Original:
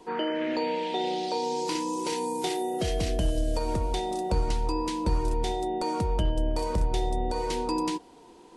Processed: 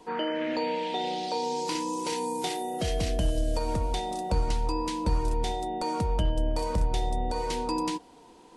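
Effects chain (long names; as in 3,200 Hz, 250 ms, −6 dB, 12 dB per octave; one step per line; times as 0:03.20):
parametric band 370 Hz −7 dB 0.27 octaves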